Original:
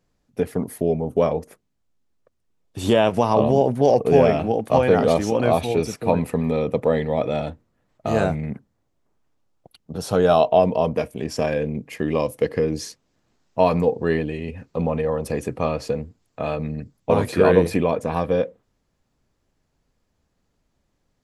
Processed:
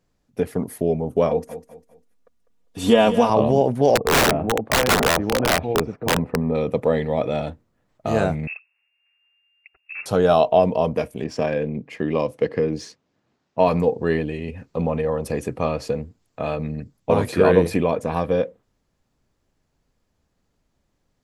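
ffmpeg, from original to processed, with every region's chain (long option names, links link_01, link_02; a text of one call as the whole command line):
ffmpeg -i in.wav -filter_complex "[0:a]asettb=1/sr,asplit=3[link_01][link_02][link_03];[link_01]atrim=end=1.294[link_04];[link_02]atrim=start=1.29:end=3.3,asetpts=PTS-STARTPTS,afade=type=in:duration=0.004:curve=qsin,afade=type=out:start_time=2.006:duration=0.004:curve=qsin,aecho=1:1:4.2:0.75,atrim=end_sample=88641,aecho=1:1:200|400|600:0.237|0.0783|0.0258,atrim=end_sample=88641[link_05];[link_03]atrim=start=3.296[link_06];[link_04][link_05]acrossfade=duration=0.004:curve1=hsin:curve2=qsin[link_07];[link_07][link_06]acrossfade=duration=0.004:curve1=qsin:curve2=hsin,asettb=1/sr,asplit=3[link_08][link_09][link_10];[link_08]atrim=end=3.954[link_11];[link_09]atrim=start=3.95:end=6.55,asetpts=PTS-STARTPTS,afade=type=in:duration=0.004:curve=qsin,afade=type=out:start_time=2.596:duration=0.004:curve=qsin,lowpass=1200,aeval=exprs='(mod(3.55*val(0)+1,2)-1)/3.55':channel_layout=same[link_12];[link_10]atrim=start=6.546[link_13];[link_11][link_12]acrossfade=duration=0.004:curve1=hsin:curve2=qsin[link_14];[link_14][link_13]acrossfade=duration=0.004:curve1=qsin:curve2=hsin,asettb=1/sr,asplit=3[link_15][link_16][link_17];[link_15]atrim=end=8.474[link_18];[link_16]atrim=start=8.47:end=10.06,asetpts=PTS-STARTPTS,afade=type=in:duration=0.004:curve=qsin,afade=type=out:start_time=1.586:duration=0.004:curve=qsin,asoftclip=type=hard:threshold=-28.5dB,lowpass=frequency=2400:width_type=q:width=0.5098,lowpass=frequency=2400:width_type=q:width=0.6013,lowpass=frequency=2400:width_type=q:width=0.9,lowpass=frequency=2400:width_type=q:width=2.563,afreqshift=-2800[link_19];[link_17]atrim=start=10.056[link_20];[link_18][link_19]acrossfade=duration=0.004:curve1=hsin:curve2=qsin[link_21];[link_21][link_20]acrossfade=duration=0.004:curve1=qsin:curve2=hsin,asettb=1/sr,asplit=3[link_22][link_23][link_24];[link_22]atrim=end=11.244[link_25];[link_23]atrim=start=11.24:end=13.68,asetpts=PTS-STARTPTS,afade=type=in:duration=0.004:curve=qsin,afade=type=out:start_time=2.436:duration=0.004:curve=qsin,highpass=100,adynamicsmooth=sensitivity=1:basefreq=5400[link_26];[link_24]atrim=start=13.676[link_27];[link_25][link_26]acrossfade=duration=0.004:curve1=hsin:curve2=qsin[link_28];[link_28][link_27]acrossfade=duration=0.004:curve1=qsin:curve2=hsin" out.wav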